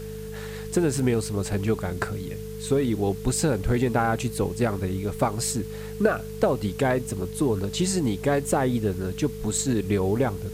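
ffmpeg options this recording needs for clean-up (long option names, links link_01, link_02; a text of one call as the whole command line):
ffmpeg -i in.wav -af "adeclick=threshold=4,bandreject=frequency=50.9:width_type=h:width=4,bandreject=frequency=101.8:width_type=h:width=4,bandreject=frequency=152.7:width_type=h:width=4,bandreject=frequency=203.6:width_type=h:width=4,bandreject=frequency=440:width=30,afwtdn=0.0035" out.wav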